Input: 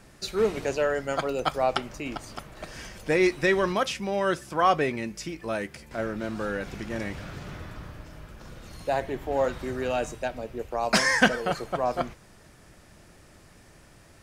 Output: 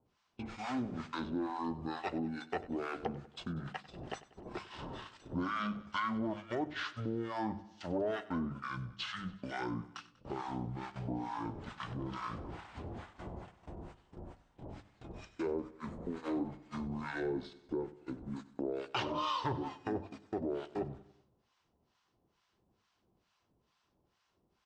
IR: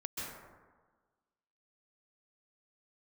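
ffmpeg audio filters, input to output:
-filter_complex "[0:a]acrossover=split=1300[a][b];[a]volume=20.5dB,asoftclip=hard,volume=-20.5dB[c];[c][b]amix=inputs=2:normalize=0,acrossover=split=1400[d][e];[d]aeval=exprs='val(0)*(1-1/2+1/2*cos(2*PI*3.9*n/s))':c=same[f];[e]aeval=exprs='val(0)*(1-1/2-1/2*cos(2*PI*3.9*n/s))':c=same[g];[f][g]amix=inputs=2:normalize=0,asetrate=25442,aresample=44100,asplit=2[h][i];[i]asoftclip=type=tanh:threshold=-22.5dB,volume=-9.5dB[j];[h][j]amix=inputs=2:normalize=0,acompressor=threshold=-40dB:ratio=3,agate=range=-22dB:threshold=-45dB:ratio=16:detection=peak,highpass=f=120:p=1,highshelf=f=6.5k:g=-6,bandreject=f=50:t=h:w=6,bandreject=f=100:t=h:w=6,bandreject=f=150:t=h:w=6,bandreject=f=200:t=h:w=6,aecho=1:1:96|192|288|384:0.126|0.0667|0.0354|0.0187,volume=3.5dB"

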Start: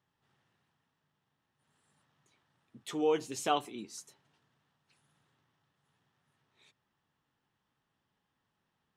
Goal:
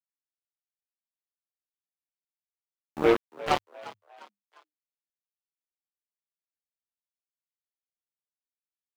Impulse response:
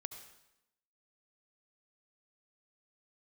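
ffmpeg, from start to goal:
-filter_complex "[0:a]highpass=45,afftdn=nr=23:nf=-59,lowpass=2.7k,acontrast=84,asplit=3[a][b][c];[b]asetrate=22050,aresample=44100,atempo=2,volume=-10dB[d];[c]asetrate=33038,aresample=44100,atempo=1.33484,volume=-4dB[e];[a][d][e]amix=inputs=3:normalize=0,flanger=delay=7.4:depth=4.1:regen=-9:speed=1.1:shape=triangular,aeval=exprs='0.282*(cos(1*acos(clip(val(0)/0.282,-1,1)))-cos(1*PI/2))+0.0562*(cos(7*acos(clip(val(0)/0.282,-1,1)))-cos(7*PI/2))':c=same,aeval=exprs='val(0)*gte(abs(val(0)),0.0126)':c=same,asplit=4[f][g][h][i];[g]adelay=351,afreqshift=100,volume=-18dB[j];[h]adelay=702,afreqshift=200,volume=-25.7dB[k];[i]adelay=1053,afreqshift=300,volume=-33.5dB[l];[f][j][k][l]amix=inputs=4:normalize=0"

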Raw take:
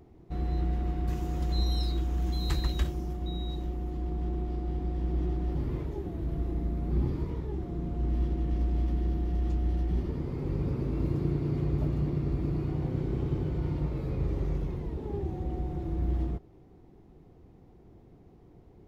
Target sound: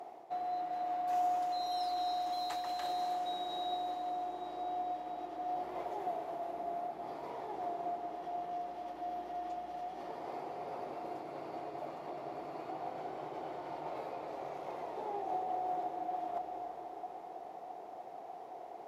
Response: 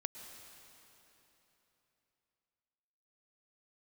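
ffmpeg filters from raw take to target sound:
-filter_complex "[0:a]areverse,acompressor=threshold=-39dB:ratio=12,areverse,highpass=f=710:t=q:w=5.1[a];[1:a]atrim=start_sample=2205,asetrate=26019,aresample=44100[b];[a][b]afir=irnorm=-1:irlink=0,volume=8.5dB"

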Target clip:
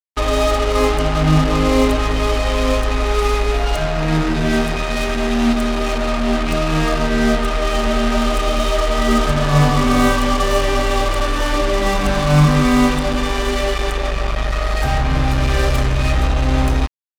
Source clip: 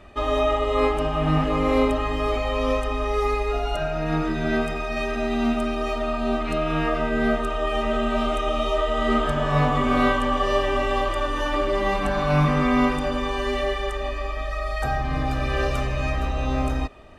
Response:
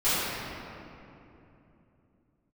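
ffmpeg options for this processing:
-af "bass=f=250:g=6,treble=f=4k:g=4,acrusher=bits=3:mix=0:aa=0.5,volume=3.5dB"

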